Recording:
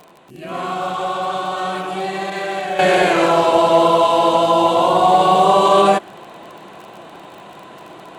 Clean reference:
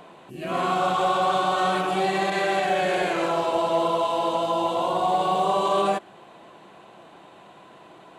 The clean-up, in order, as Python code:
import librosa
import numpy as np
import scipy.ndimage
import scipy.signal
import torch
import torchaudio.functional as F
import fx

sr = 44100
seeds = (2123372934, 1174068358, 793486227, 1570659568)

y = fx.fix_declick_ar(x, sr, threshold=6.5)
y = fx.fix_level(y, sr, at_s=2.79, step_db=-10.0)